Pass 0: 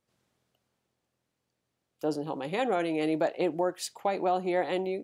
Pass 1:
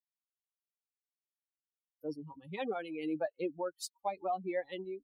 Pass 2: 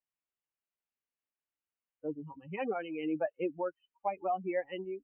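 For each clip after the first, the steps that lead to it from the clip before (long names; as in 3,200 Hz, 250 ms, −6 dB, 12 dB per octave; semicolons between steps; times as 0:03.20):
spectral dynamics exaggerated over time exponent 3; level −3 dB
linear-phase brick-wall low-pass 3,100 Hz; level +2 dB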